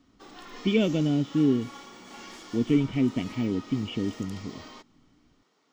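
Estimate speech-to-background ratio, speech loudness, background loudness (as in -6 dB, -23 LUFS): 18.0 dB, -27.0 LUFS, -45.0 LUFS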